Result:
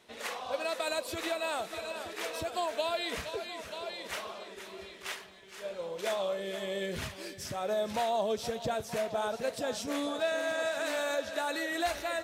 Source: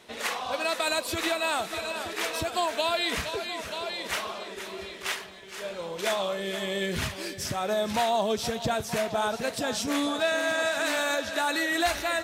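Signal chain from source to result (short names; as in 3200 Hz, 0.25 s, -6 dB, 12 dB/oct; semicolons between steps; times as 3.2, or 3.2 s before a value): dynamic EQ 530 Hz, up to +7 dB, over -42 dBFS, Q 1.9; gain -8 dB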